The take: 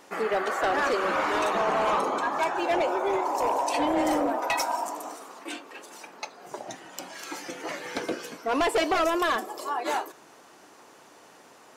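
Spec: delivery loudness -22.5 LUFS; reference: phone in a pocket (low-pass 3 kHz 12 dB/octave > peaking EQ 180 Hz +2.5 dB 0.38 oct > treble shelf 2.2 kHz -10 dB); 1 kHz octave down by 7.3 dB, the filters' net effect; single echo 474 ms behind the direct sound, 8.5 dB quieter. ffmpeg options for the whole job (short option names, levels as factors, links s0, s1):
-af "lowpass=3000,equalizer=f=180:t=o:w=0.38:g=2.5,equalizer=f=1000:t=o:g=-7.5,highshelf=f=2200:g=-10,aecho=1:1:474:0.376,volume=2.51"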